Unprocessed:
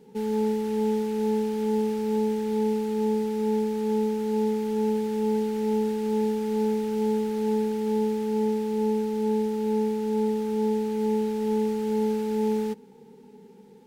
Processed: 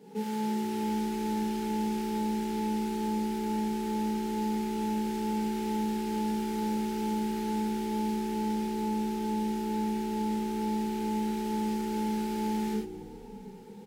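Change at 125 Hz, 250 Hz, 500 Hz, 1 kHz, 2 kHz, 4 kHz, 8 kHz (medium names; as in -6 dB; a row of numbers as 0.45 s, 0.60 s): no reading, -3.5 dB, -11.5 dB, +0.5 dB, +1.0 dB, +1.5 dB, +1.5 dB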